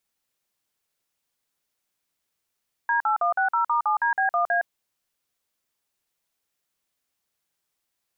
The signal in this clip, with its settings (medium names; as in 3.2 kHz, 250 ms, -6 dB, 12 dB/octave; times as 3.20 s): DTMF "D8160*7DB1A", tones 113 ms, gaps 48 ms, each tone -22 dBFS